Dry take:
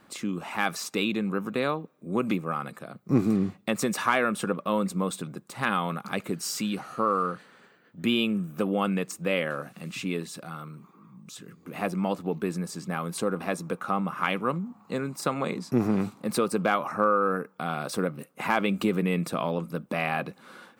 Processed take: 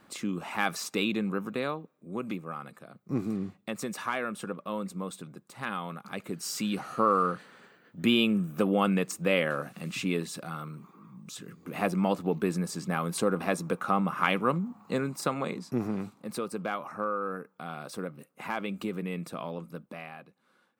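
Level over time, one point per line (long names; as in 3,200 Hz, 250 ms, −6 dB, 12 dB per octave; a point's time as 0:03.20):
0:01.21 −1.5 dB
0:02.11 −8 dB
0:06.07 −8 dB
0:06.87 +1 dB
0:14.96 +1 dB
0:16.07 −8.5 dB
0:19.75 −8.5 dB
0:20.28 −20 dB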